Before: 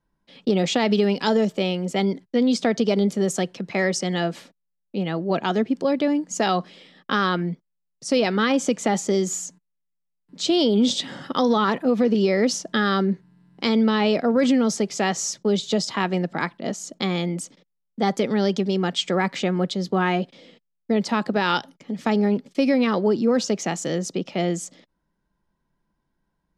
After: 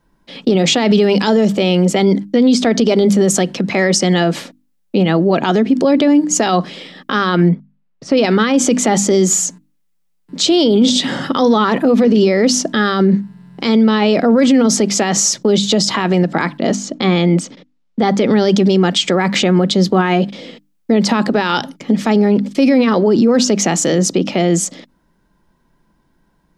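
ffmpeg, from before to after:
ffmpeg -i in.wav -filter_complex "[0:a]asplit=3[link_01][link_02][link_03];[link_01]afade=type=out:start_time=7.48:duration=0.02[link_04];[link_02]lowpass=2300,afade=type=in:start_time=7.48:duration=0.02,afade=type=out:start_time=8.16:duration=0.02[link_05];[link_03]afade=type=in:start_time=8.16:duration=0.02[link_06];[link_04][link_05][link_06]amix=inputs=3:normalize=0,asettb=1/sr,asplit=3[link_07][link_08][link_09];[link_07]atrim=end=16.754[link_10];[link_08]atrim=start=16.75:end=18.33,asetpts=PTS-STARTPTS,afade=type=in:duration=0.004:curve=qsin,afade=type=out:start_time=1.576:duration=0.004:curve=qsin,lowpass=4700[link_11];[link_09]atrim=start=18.326[link_12];[link_10][link_11]acrossfade=duration=0.004:curve1=hsin:curve2=qsin[link_13];[link_13][link_12]acrossfade=duration=0.004:curve1=qsin:curve2=hsin,equalizer=frequency=270:width=1.9:gain=3,bandreject=frequency=50:width_type=h:width=6,bandreject=frequency=100:width_type=h:width=6,bandreject=frequency=150:width_type=h:width=6,bandreject=frequency=200:width_type=h:width=6,bandreject=frequency=250:width_type=h:width=6,bandreject=frequency=300:width_type=h:width=6,alimiter=level_in=18.5dB:limit=-1dB:release=50:level=0:latency=1,volume=-3.5dB" out.wav

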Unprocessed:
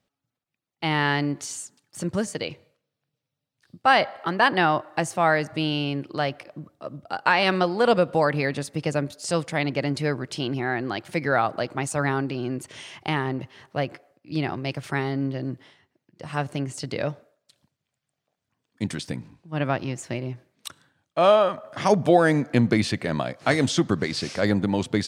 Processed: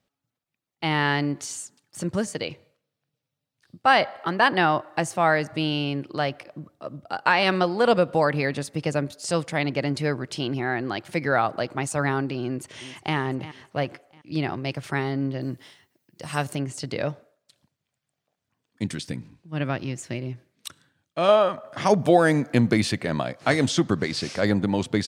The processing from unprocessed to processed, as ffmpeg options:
ffmpeg -i in.wav -filter_complex "[0:a]asplit=2[link_01][link_02];[link_02]afade=type=in:start_time=12.46:duration=0.01,afade=type=out:start_time=13.16:duration=0.01,aecho=0:1:350|700|1050|1400:0.188365|0.0847642|0.0381439|0.0171648[link_03];[link_01][link_03]amix=inputs=2:normalize=0,asettb=1/sr,asplit=3[link_04][link_05][link_06];[link_04]atrim=end=15.414[link_07];[link_05]atrim=start=15.41:end=16.55,asetpts=PTS-STARTPTS,afade=type=in:duration=0.004:curve=qsin,afade=type=out:start_time=1.136:duration=0.004:curve=qsin,aemphasis=mode=production:type=75kf[link_08];[link_06]atrim=start=16.546[link_09];[link_07][link_08]acrossfade=duration=0.004:curve1=hsin:curve2=qsin[link_10];[link_10][link_09]acrossfade=duration=0.004:curve1=qsin:curve2=hsin,asettb=1/sr,asplit=3[link_11][link_12][link_13];[link_11]atrim=end=18.834[link_14];[link_12]atrim=start=18.83:end=21.29,asetpts=PTS-STARTPTS,afade=type=in:duration=0.004:curve=qsin,afade=type=out:start_time=2.456:duration=0.004:curve=qsin,equalizer=frequency=830:width_type=o:width=1.4:gain=-6[link_15];[link_13]atrim=start=21.286[link_16];[link_14][link_15]acrossfade=duration=0.004:curve1=hsin:curve2=qsin[link_17];[link_17][link_16]acrossfade=duration=0.004:curve1=qsin:curve2=hsin,asettb=1/sr,asplit=3[link_18][link_19][link_20];[link_18]atrim=end=21.994[link_21];[link_19]atrim=start=21.99:end=22.97,asetpts=PTS-STARTPTS,afade=type=in:duration=0.004:curve=qsin,afade=type=out:start_time=0.976:duration=0.004:curve=qsin,highshelf=frequency=9300:gain=8[link_22];[link_20]atrim=start=22.966[link_23];[link_21][link_22]acrossfade=duration=0.004:curve1=hsin:curve2=qsin[link_24];[link_24][link_23]acrossfade=duration=0.004:curve1=qsin:curve2=hsin" out.wav

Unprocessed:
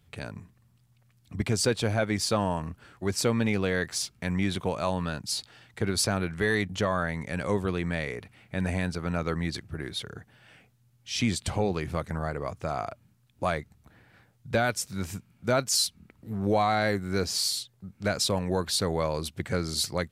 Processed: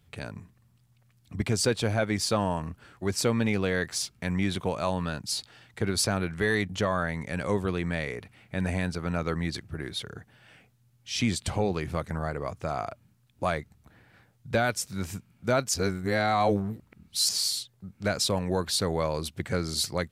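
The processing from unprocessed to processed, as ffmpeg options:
ffmpeg -i in.wav -filter_complex "[0:a]asplit=3[link_01][link_02][link_03];[link_01]atrim=end=15.742[link_04];[link_02]atrim=start=15.738:end=17.292,asetpts=PTS-STARTPTS,areverse[link_05];[link_03]atrim=start=17.288[link_06];[link_04][link_05]acrossfade=duration=0.004:curve1=hsin:curve2=hsin[link_07];[link_07][link_06]acrossfade=duration=0.004:curve1=hsin:curve2=hsin" out.wav

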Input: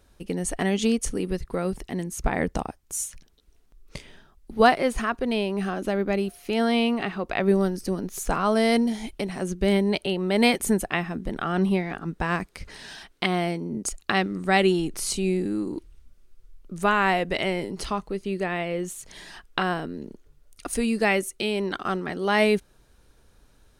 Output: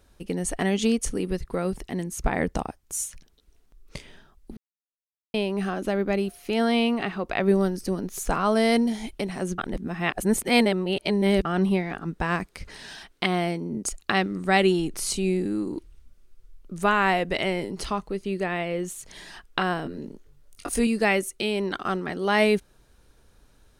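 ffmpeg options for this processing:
ffmpeg -i in.wav -filter_complex "[0:a]asettb=1/sr,asplit=3[link_01][link_02][link_03];[link_01]atrim=end=19.834[link_04];[link_02]atrim=start=19.83:end=20.87,asetpts=PTS-STARTPTS,afade=type=in:duration=0.004:curve=qsin,afade=type=out:start_time=1.036:duration=0.004:curve=qsin,asplit=2[link_05][link_06];[link_06]adelay=21,volume=-5dB[link_07];[link_05][link_07]amix=inputs=2:normalize=0,atrim=end_sample=45864[link_08];[link_03]atrim=start=20.866[link_09];[link_04][link_08]acrossfade=duration=0.004:curve1=hsin:curve2=qsin[link_10];[link_10][link_09]acrossfade=duration=0.004:curve1=qsin:curve2=hsin,asplit=5[link_11][link_12][link_13][link_14][link_15];[link_11]atrim=end=4.57,asetpts=PTS-STARTPTS,afade=type=out:start_time=4.566:duration=0.004:curve=hsin[link_16];[link_12]atrim=start=4.57:end=5.34,asetpts=PTS-STARTPTS,volume=0[link_17];[link_13]atrim=start=5.34:end=9.582,asetpts=PTS-STARTPTS,afade=type=in:duration=0.004:curve=hsin[link_18];[link_14]atrim=start=9.578:end=11.452,asetpts=PTS-STARTPTS,areverse[link_19];[link_15]atrim=start=11.448[link_20];[link_16][link_17][link_18]concat=n=3:v=0:a=1[link_21];[link_21][link_19]acrossfade=duration=0.004:curve1=hsin:curve2=hsin[link_22];[link_22][link_20]acrossfade=duration=0.004:curve1=hsin:curve2=hsin" out.wav

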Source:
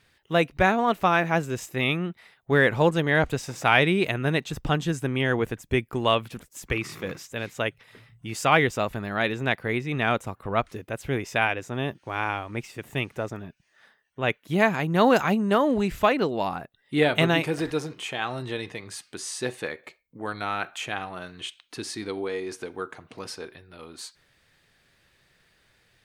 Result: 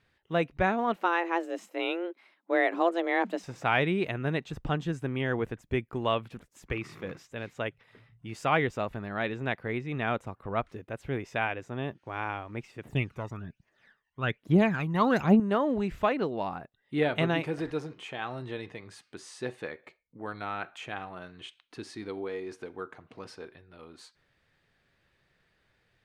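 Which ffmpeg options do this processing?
ffmpeg -i in.wav -filter_complex "[0:a]asettb=1/sr,asplit=3[link_01][link_02][link_03];[link_01]atrim=end=0.964[link_04];[link_02]atrim=start=0.96:end=3.43,asetpts=PTS-STARTPTS,afade=type=in:duration=0.004:curve=qsin,afade=type=out:start_time=2.466:duration=0.004:curve=qsin,afreqshift=170[link_05];[link_03]atrim=start=3.426[link_06];[link_04][link_05]acrossfade=duration=0.004:curve1=hsin:curve2=qsin[link_07];[link_07][link_06]acrossfade=duration=0.004:curve1=qsin:curve2=hsin,asettb=1/sr,asplit=3[link_08][link_09][link_10];[link_08]atrim=end=12.854[link_11];[link_09]atrim=start=12.85:end=15.4,asetpts=PTS-STARTPTS,afade=type=in:duration=0.004:curve=qsin,afade=type=out:start_time=2.546:duration=0.004:curve=qsin,aphaser=in_gain=1:out_gain=1:delay=1.1:decay=0.67:speed=1.2:type=triangular[link_12];[link_10]atrim=start=15.396[link_13];[link_11][link_12]acrossfade=duration=0.004:curve1=hsin:curve2=qsin[link_14];[link_14][link_13]acrossfade=duration=0.004:curve1=qsin:curve2=hsin,lowpass=frequency=2300:poles=1,volume=-5dB" out.wav

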